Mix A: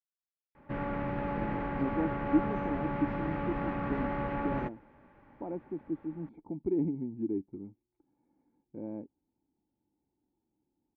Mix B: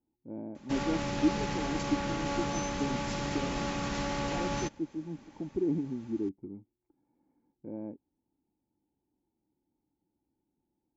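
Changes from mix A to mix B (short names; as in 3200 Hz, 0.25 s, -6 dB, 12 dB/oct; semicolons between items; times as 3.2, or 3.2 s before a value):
speech: entry -1.10 s; background: remove LPF 2000 Hz 24 dB/oct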